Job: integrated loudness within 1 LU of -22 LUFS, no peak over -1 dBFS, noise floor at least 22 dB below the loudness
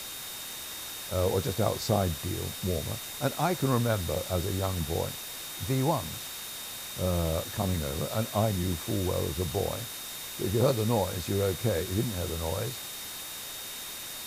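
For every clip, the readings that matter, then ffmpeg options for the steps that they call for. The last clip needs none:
steady tone 3700 Hz; tone level -44 dBFS; noise floor -40 dBFS; noise floor target -53 dBFS; loudness -30.5 LUFS; peak -12.0 dBFS; loudness target -22.0 LUFS
-> -af "bandreject=f=3.7k:w=30"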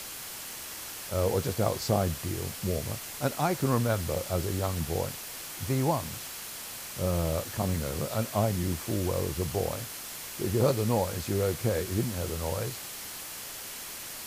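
steady tone none; noise floor -41 dBFS; noise floor target -53 dBFS
-> -af "afftdn=nr=12:nf=-41"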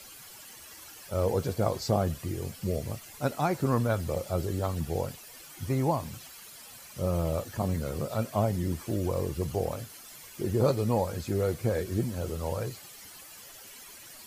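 noise floor -49 dBFS; noise floor target -53 dBFS
-> -af "afftdn=nr=6:nf=-49"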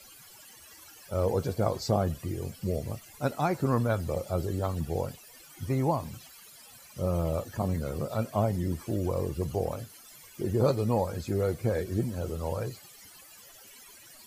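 noise floor -52 dBFS; noise floor target -53 dBFS
-> -af "afftdn=nr=6:nf=-52"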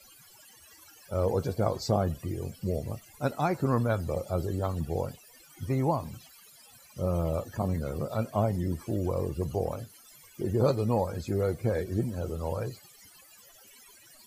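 noise floor -56 dBFS; loudness -30.5 LUFS; peak -12.0 dBFS; loudness target -22.0 LUFS
-> -af "volume=8.5dB"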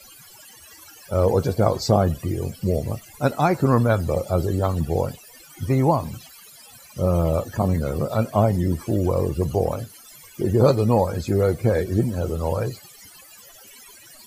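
loudness -22.0 LUFS; peak -3.5 dBFS; noise floor -47 dBFS

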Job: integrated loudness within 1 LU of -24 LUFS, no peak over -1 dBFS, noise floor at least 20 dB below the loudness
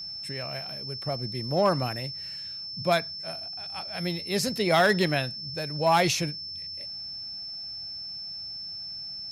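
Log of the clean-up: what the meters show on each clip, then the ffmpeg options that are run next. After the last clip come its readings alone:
steady tone 5300 Hz; tone level -35 dBFS; loudness -28.5 LUFS; peak -10.5 dBFS; loudness target -24.0 LUFS
-> -af "bandreject=f=5.3k:w=30"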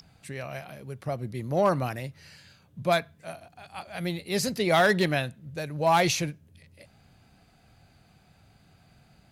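steady tone none; loudness -27.0 LUFS; peak -11.0 dBFS; loudness target -24.0 LUFS
-> -af "volume=3dB"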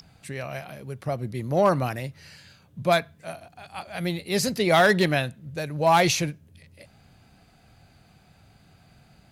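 loudness -24.0 LUFS; peak -8.0 dBFS; noise floor -58 dBFS

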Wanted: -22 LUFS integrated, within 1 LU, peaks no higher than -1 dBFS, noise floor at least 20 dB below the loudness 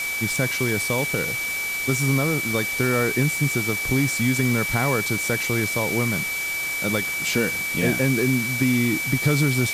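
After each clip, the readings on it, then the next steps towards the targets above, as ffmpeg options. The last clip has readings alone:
steady tone 2300 Hz; tone level -25 dBFS; noise floor -27 dBFS; noise floor target -42 dBFS; loudness -21.5 LUFS; peak -8.0 dBFS; loudness target -22.0 LUFS
-> -af "bandreject=f=2.3k:w=30"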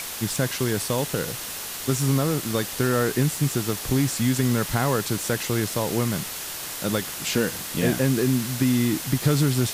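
steady tone none; noise floor -34 dBFS; noise floor target -44 dBFS
-> -af "afftdn=nr=10:nf=-34"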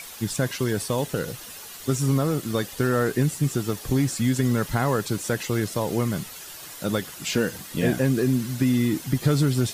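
noise floor -41 dBFS; noise floor target -45 dBFS
-> -af "afftdn=nr=6:nf=-41"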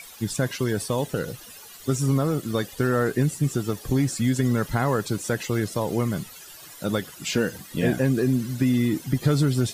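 noise floor -44 dBFS; noise floor target -45 dBFS
-> -af "afftdn=nr=6:nf=-44"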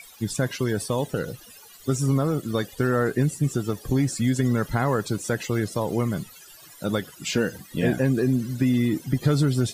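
noise floor -48 dBFS; loudness -25.0 LUFS; peak -10.0 dBFS; loudness target -22.0 LUFS
-> -af "volume=3dB"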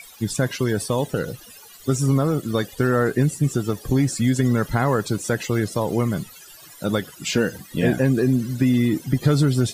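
loudness -22.0 LUFS; peak -7.0 dBFS; noise floor -45 dBFS

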